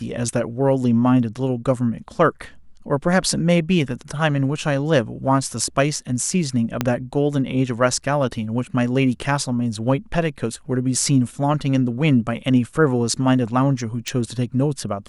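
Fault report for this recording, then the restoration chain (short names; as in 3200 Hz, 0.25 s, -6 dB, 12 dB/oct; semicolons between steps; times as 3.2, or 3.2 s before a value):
6.81 pop -5 dBFS
14.08 pop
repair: de-click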